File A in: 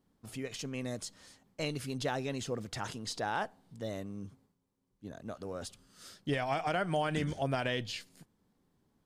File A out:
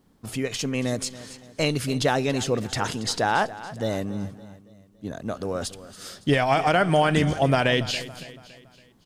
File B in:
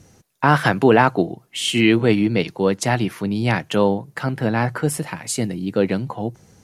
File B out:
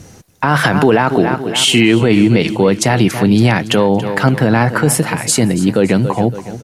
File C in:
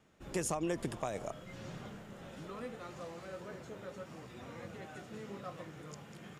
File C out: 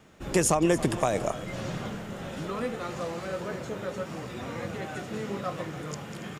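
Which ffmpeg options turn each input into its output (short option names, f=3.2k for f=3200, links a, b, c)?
-af "aecho=1:1:281|562|843|1124:0.158|0.0729|0.0335|0.0154,alimiter=level_in=13dB:limit=-1dB:release=50:level=0:latency=1,volume=-1dB"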